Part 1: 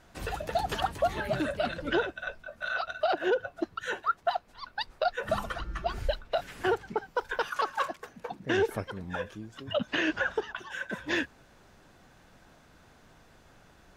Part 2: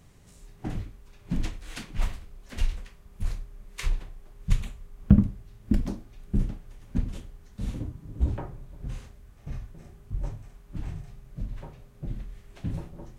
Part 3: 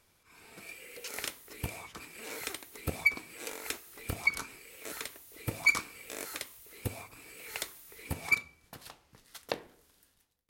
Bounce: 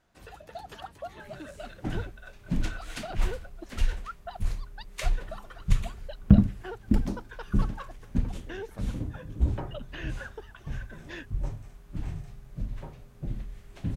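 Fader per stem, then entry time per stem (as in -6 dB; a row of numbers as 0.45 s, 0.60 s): -12.5 dB, +0.5 dB, mute; 0.00 s, 1.20 s, mute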